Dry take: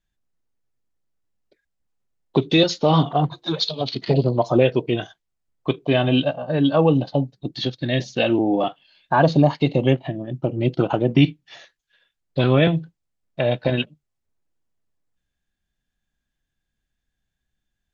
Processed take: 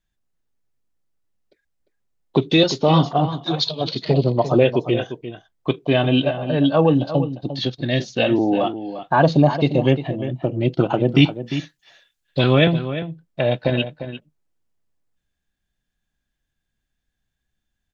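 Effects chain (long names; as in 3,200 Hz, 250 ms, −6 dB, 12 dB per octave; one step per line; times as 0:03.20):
0:11.11–0:12.65: high-shelf EQ 3,100 Hz +8.5 dB
slap from a distant wall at 60 metres, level −11 dB
level +1 dB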